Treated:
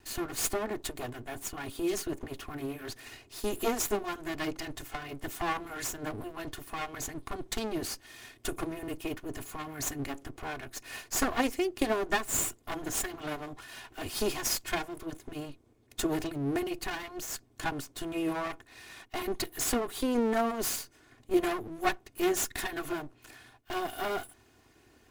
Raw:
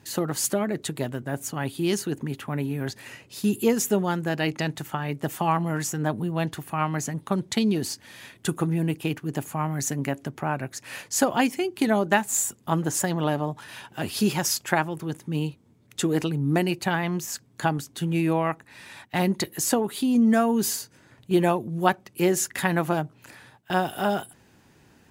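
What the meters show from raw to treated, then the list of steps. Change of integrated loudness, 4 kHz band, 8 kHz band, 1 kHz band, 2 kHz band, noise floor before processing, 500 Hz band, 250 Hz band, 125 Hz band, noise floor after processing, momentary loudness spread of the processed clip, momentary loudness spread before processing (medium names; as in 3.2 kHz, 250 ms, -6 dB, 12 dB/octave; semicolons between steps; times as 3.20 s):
-8.0 dB, -5.0 dB, -5.5 dB, -8.0 dB, -6.5 dB, -58 dBFS, -6.5 dB, -10.0 dB, -16.5 dB, -63 dBFS, 12 LU, 10 LU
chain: comb filter that takes the minimum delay 2.8 ms; trim -3 dB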